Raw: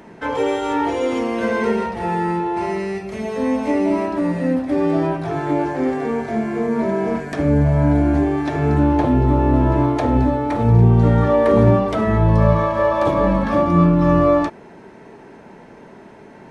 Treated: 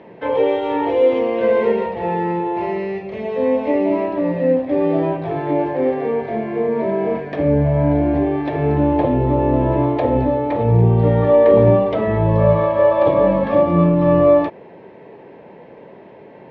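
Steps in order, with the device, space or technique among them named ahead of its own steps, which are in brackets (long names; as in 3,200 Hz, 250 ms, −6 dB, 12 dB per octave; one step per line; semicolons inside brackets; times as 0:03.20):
guitar cabinet (loudspeaker in its box 87–3,500 Hz, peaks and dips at 230 Hz −5 dB, 520 Hz +9 dB, 1,400 Hz −10 dB)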